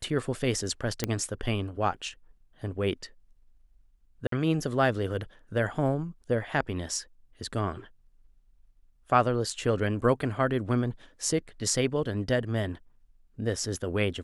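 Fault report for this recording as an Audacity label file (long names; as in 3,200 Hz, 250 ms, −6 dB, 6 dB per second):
1.040000	1.040000	click −11 dBFS
4.270000	4.320000	drop-out 53 ms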